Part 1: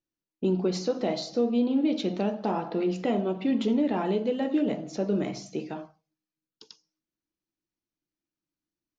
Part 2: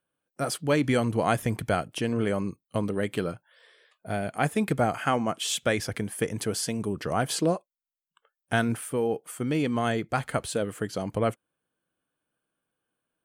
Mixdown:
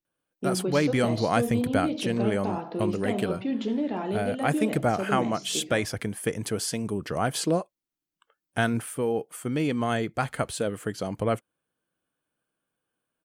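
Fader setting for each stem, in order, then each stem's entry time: -3.0, 0.0 dB; 0.00, 0.05 s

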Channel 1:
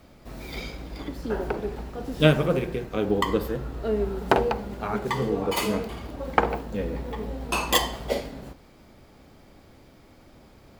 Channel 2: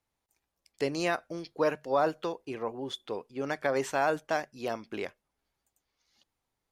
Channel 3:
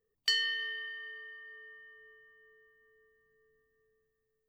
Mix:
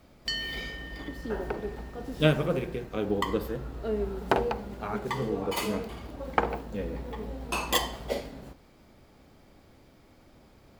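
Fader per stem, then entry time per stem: -4.5 dB, off, -3.0 dB; 0.00 s, off, 0.00 s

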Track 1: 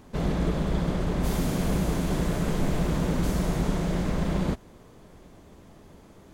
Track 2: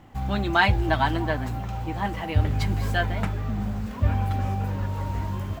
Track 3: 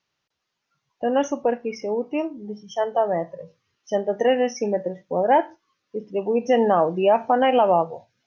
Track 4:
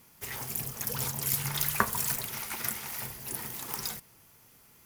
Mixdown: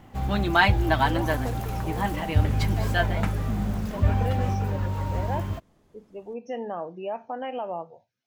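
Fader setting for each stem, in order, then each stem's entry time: -12.0, +0.5, -14.5, -19.0 dB; 0.00, 0.00, 0.00, 0.00 s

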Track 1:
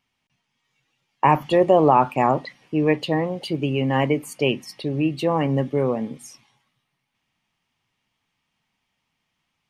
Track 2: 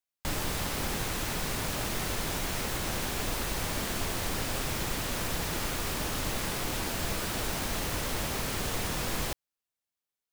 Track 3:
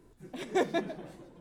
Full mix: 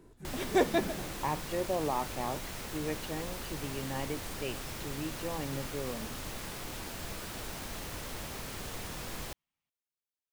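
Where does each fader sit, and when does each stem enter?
-17.0, -8.5, +2.0 dB; 0.00, 0.00, 0.00 s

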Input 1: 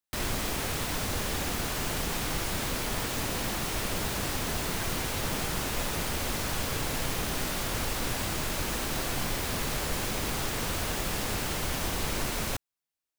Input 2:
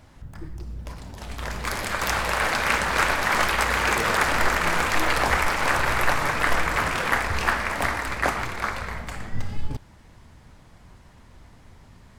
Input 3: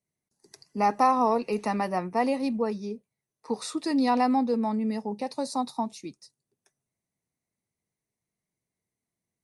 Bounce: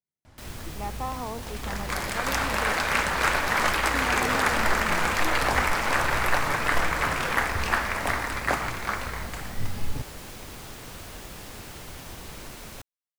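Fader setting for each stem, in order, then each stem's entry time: -10.0, -2.0, -12.0 dB; 0.25, 0.25, 0.00 s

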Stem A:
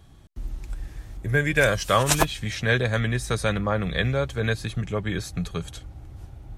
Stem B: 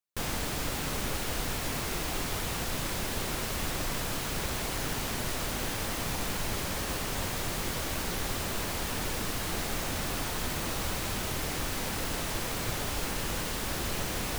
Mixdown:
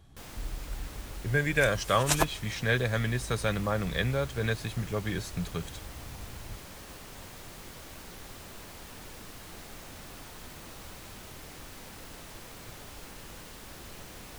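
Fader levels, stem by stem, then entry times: -5.0, -13.0 dB; 0.00, 0.00 s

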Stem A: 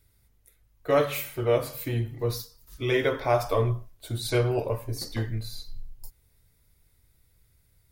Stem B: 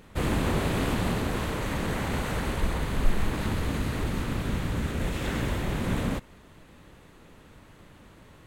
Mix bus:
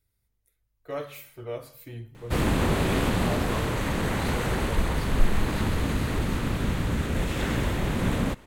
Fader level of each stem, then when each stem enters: -11.5, +2.5 dB; 0.00, 2.15 s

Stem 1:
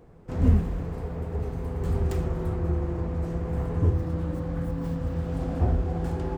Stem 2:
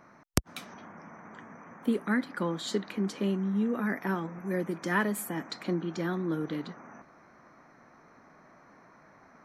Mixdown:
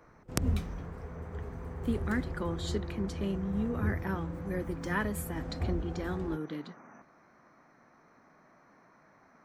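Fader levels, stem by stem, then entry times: -10.0, -4.5 dB; 0.00, 0.00 s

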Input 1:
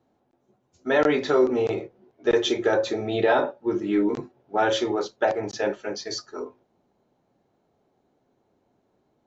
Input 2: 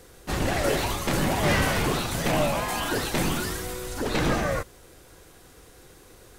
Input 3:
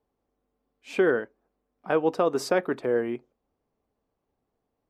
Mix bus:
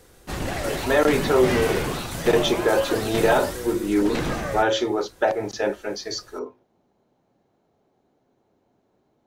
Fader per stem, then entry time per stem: +1.5, -2.5, -11.0 dB; 0.00, 0.00, 0.70 s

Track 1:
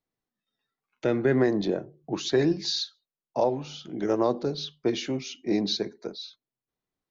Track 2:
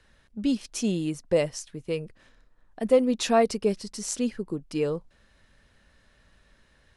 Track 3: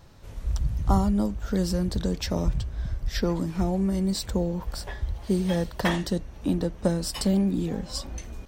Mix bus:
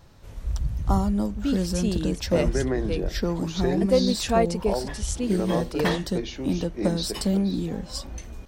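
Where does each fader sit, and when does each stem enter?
-4.0, -1.0, -0.5 dB; 1.30, 1.00, 0.00 s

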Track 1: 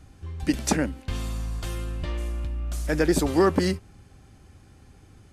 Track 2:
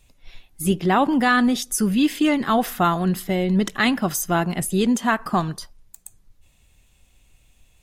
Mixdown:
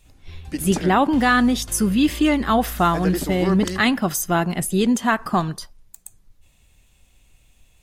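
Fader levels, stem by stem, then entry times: -4.5, +1.0 dB; 0.05, 0.00 s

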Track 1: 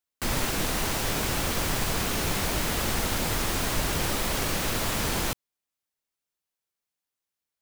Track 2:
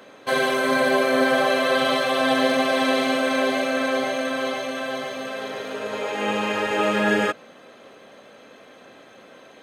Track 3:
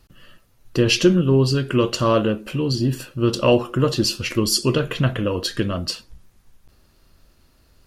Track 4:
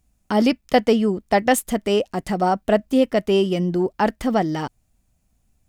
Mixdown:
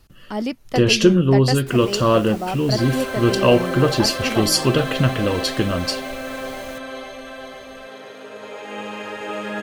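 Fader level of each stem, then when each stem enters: -14.0, -7.0, +1.5, -7.5 dB; 1.45, 2.50, 0.00, 0.00 s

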